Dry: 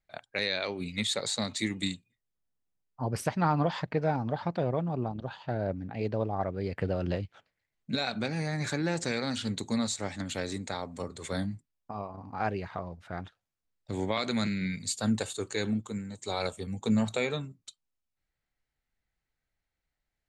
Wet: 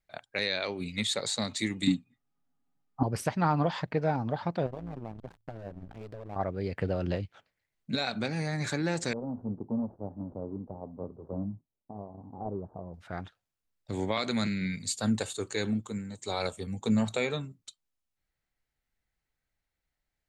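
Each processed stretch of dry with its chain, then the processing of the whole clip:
0:01.87–0:03.03: high-shelf EQ 6,500 Hz −12 dB + comb filter 7.2 ms, depth 75% + hollow resonant body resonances 230/790/1,200 Hz, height 15 dB, ringing for 35 ms
0:04.66–0:06.36: slack as between gear wheels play −33.5 dBFS + downward compressor 2.5 to 1, threshold −34 dBFS + amplitude modulation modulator 110 Hz, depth 60%
0:09.13–0:12.94: running median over 41 samples + Butterworth low-pass 1,000 Hz + low-shelf EQ 73 Hz −8.5 dB
whole clip: no processing

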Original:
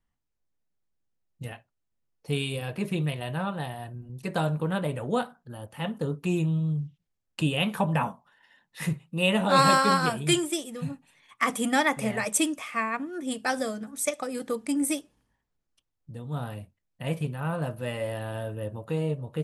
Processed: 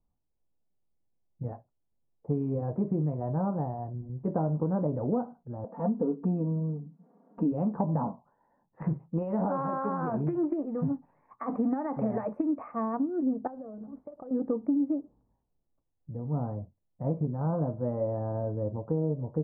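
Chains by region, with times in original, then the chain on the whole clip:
0:05.64–0:07.52: linear-phase brick-wall high-pass 160 Hz + upward compression, threshold −35 dBFS + comb filter 4.3 ms, depth 74%
0:08.81–0:12.72: parametric band 2,900 Hz +12 dB 2.8 octaves + downward compressor 12 to 1, threshold −22 dBFS + highs frequency-modulated by the lows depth 0.2 ms
0:13.47–0:14.31: low-pass filter 3,100 Hz 6 dB per octave + downward compressor 16 to 1, threshold −40 dBFS + slack as between gear wheels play −54.5 dBFS
whole clip: inverse Chebyshev low-pass filter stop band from 3,100 Hz, stop band 60 dB; dynamic equaliser 270 Hz, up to +7 dB, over −43 dBFS, Q 2.3; downward compressor, threshold −27 dBFS; level +2.5 dB

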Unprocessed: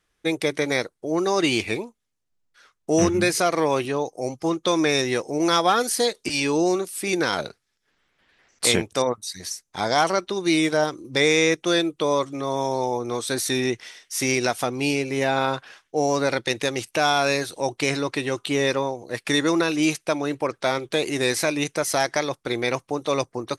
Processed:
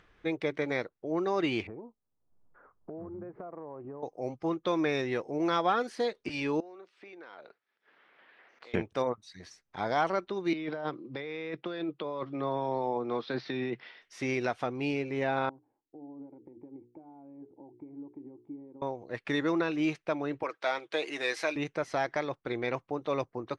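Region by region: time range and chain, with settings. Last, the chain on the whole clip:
0:01.67–0:04.03: low-pass filter 1,100 Hz 24 dB per octave + downward compressor 10 to 1, threshold −31 dBFS
0:06.60–0:08.74: downward compressor, threshold −35 dBFS + band-pass filter 400–5,800 Hz + high-frequency loss of the air 78 metres
0:10.53–0:14.02: Chebyshev band-pass filter 130–5,100 Hz, order 5 + compressor whose output falls as the input rises −26 dBFS
0:15.49–0:18.82: mains-hum notches 60/120/180/240/300/360/420/480 Hz + downward compressor 12 to 1, threshold −26 dBFS + formant resonators in series u
0:20.43–0:21.56: high-pass filter 290 Hz + spectral tilt +2.5 dB per octave + comb filter 6.3 ms, depth 40%
whole clip: low-pass filter 2,500 Hz 12 dB per octave; upward compression, threshold −40 dBFS; level −7.5 dB

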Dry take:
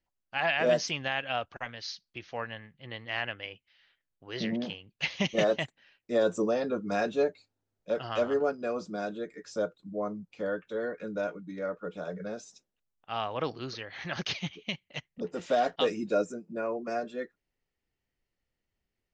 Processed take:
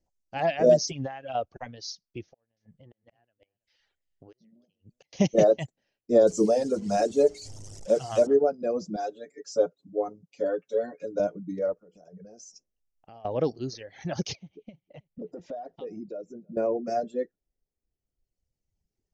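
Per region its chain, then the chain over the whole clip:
0:00.83–0:01.35: comb filter 7.4 ms, depth 79% + downward compressor 8 to 1, threshold −30 dBFS
0:02.24–0:05.13: gate with flip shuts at −28 dBFS, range −34 dB + downward compressor 10 to 1, threshold −53 dBFS + single-tap delay 326 ms −16 dB
0:06.27–0:08.27: linear delta modulator 64 kbit/s, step −39 dBFS + high-shelf EQ 2,800 Hz +5 dB + mains-hum notches 60/120/180/240/300/360/420/480 Hz
0:08.96–0:11.20: high-pass filter 470 Hz 6 dB per octave + comb filter 7.3 ms, depth 80%
0:11.73–0:13.25: parametric band 5,800 Hz +5 dB 0.35 octaves + downward compressor 5 to 1, threshold −49 dBFS + Butterworth band-reject 3,700 Hz, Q 5
0:14.35–0:16.57: downward compressor 3 to 1, threshold −46 dBFS + Gaussian smoothing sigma 1.9 samples + single-tap delay 319 ms −20.5 dB
whole clip: low-pass filter 7,100 Hz 24 dB per octave; reverb reduction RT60 1.9 s; flat-topped bell 2,000 Hz −15 dB 2.4 octaves; level +8 dB

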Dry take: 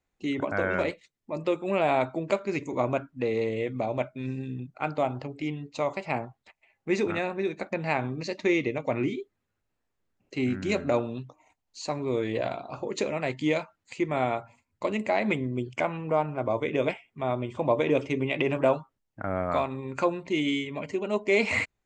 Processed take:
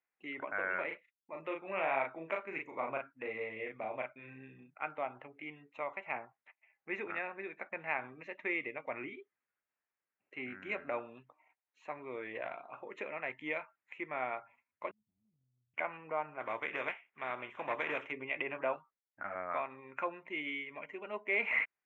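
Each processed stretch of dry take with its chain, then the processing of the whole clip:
0:00.87–0:04.76: downward expander −52 dBFS + double-tracking delay 37 ms −3 dB
0:14.91–0:15.74: mu-law and A-law mismatch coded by A + inverse Chebyshev low-pass filter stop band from 500 Hz, stop band 70 dB + downward compressor, threshold −53 dBFS
0:16.39–0:18.10: compressing power law on the bin magnitudes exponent 0.62 + gain into a clipping stage and back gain 18.5 dB
0:18.76–0:19.35: transient designer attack +5 dB, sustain −3 dB + string-ensemble chorus
whole clip: inverse Chebyshev low-pass filter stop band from 4,300 Hz, stop band 40 dB; first difference; level +9 dB

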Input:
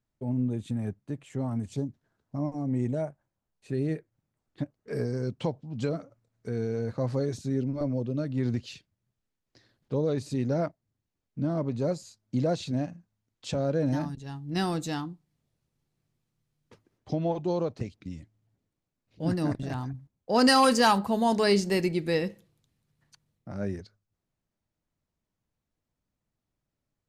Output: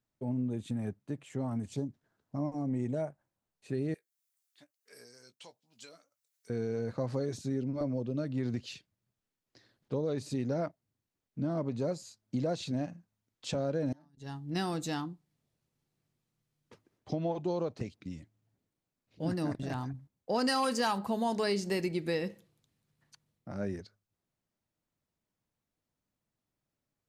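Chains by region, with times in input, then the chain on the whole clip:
0:03.94–0:06.50: first difference + double-tracking delay 17 ms −11 dB + one half of a high-frequency compander encoder only
0:13.92–0:14.44: notch filter 2,500 Hz, Q 8.2 + gate with flip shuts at −27 dBFS, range −29 dB
whole clip: low-shelf EQ 81 Hz −10 dB; downward compressor 3 to 1, threshold −28 dBFS; level −1 dB

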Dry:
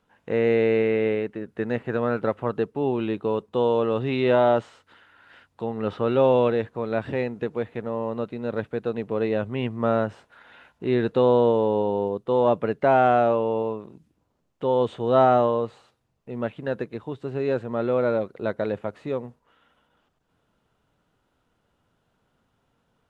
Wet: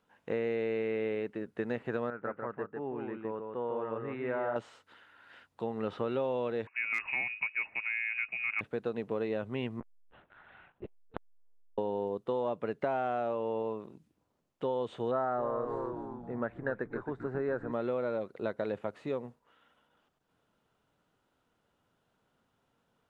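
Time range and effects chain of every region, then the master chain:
0:02.10–0:04.56: transistor ladder low-pass 2,000 Hz, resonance 50% + single-tap delay 149 ms −4.5 dB
0:06.67–0:08.61: voice inversion scrambler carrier 2,700 Hz + hard clipping −13.5 dBFS
0:09.80–0:11.78: high-frequency loss of the air 270 metres + linear-prediction vocoder at 8 kHz pitch kept + saturating transformer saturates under 780 Hz
0:15.11–0:17.72: high shelf with overshoot 2,200 Hz −9.5 dB, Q 3 + echo with shifted repeats 268 ms, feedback 48%, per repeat −120 Hz, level −11 dB
whole clip: low-shelf EQ 110 Hz −8.5 dB; downward compressor, threshold −25 dBFS; level −4 dB

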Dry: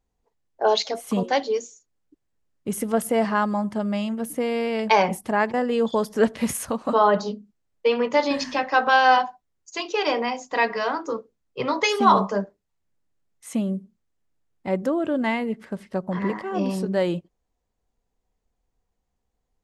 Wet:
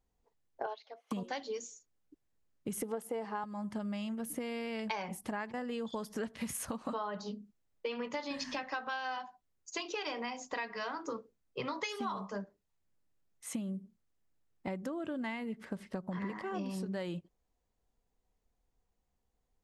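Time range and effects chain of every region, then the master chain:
0:00.66–0:01.11: high-pass filter 540 Hz + high-frequency loss of the air 260 metres + expander for the loud parts 2.5 to 1, over −31 dBFS
0:02.82–0:03.44: high-pass filter 180 Hz + hollow resonant body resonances 440/810 Hz, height 12 dB, ringing for 20 ms + one half of a high-frequency compander decoder only
whole clip: dynamic equaliser 510 Hz, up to −6 dB, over −33 dBFS, Q 0.78; downward compressor 10 to 1, threshold −31 dBFS; level −3.5 dB

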